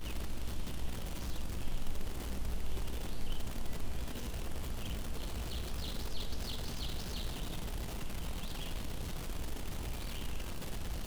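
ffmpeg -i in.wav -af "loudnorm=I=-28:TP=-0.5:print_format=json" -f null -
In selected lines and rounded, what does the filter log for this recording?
"input_i" : "-42.5",
"input_tp" : "-22.0",
"input_lra" : "1.2",
"input_thresh" : "-52.5",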